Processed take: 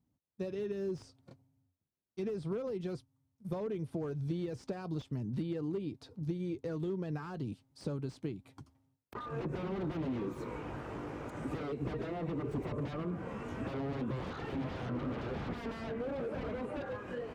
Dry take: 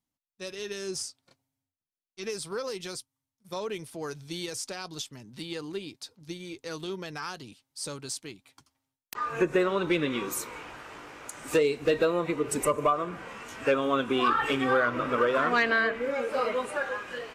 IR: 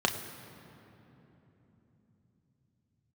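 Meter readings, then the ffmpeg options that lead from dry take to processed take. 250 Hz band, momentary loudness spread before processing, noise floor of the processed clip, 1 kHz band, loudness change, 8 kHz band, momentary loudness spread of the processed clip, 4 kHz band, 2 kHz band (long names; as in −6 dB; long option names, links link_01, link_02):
−4.0 dB, 17 LU, −82 dBFS, −15.0 dB, −9.5 dB, below −25 dB, 6 LU, −17.5 dB, −18.5 dB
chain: -filter_complex "[0:a]aeval=exprs='0.0355*(abs(mod(val(0)/0.0355+3,4)-2)-1)':channel_layout=same,highpass=63,acrossover=split=4200[link_01][link_02];[link_02]acompressor=threshold=-54dB:ratio=4:attack=1:release=60[link_03];[link_01][link_03]amix=inputs=2:normalize=0,lowshelf=frequency=170:gain=8,acompressor=threshold=-42dB:ratio=6,tiltshelf=frequency=970:gain=9.5,volume=1dB"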